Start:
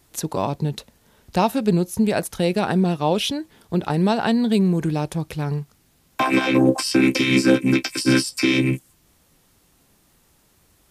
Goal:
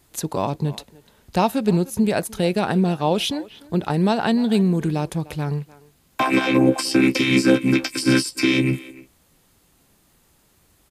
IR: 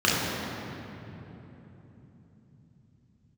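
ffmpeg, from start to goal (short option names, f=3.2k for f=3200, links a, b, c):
-filter_complex "[0:a]bandreject=f=5.6k:w=20,asplit=2[a][b];[b]adelay=300,highpass=300,lowpass=3.4k,asoftclip=type=hard:threshold=-13.5dB,volume=-18dB[c];[a][c]amix=inputs=2:normalize=0"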